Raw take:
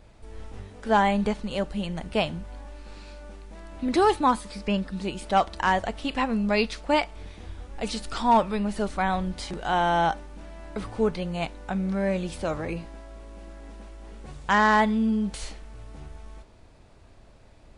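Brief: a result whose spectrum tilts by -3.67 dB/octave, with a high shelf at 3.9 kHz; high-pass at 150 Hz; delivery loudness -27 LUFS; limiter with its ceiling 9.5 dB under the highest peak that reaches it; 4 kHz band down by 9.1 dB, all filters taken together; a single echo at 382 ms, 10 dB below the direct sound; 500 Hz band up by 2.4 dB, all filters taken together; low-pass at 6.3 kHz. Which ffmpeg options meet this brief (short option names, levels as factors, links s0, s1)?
-af "highpass=150,lowpass=6300,equalizer=f=500:t=o:g=3.5,highshelf=f=3900:g=-8,equalizer=f=4000:t=o:g=-8,alimiter=limit=0.126:level=0:latency=1,aecho=1:1:382:0.316,volume=1.33"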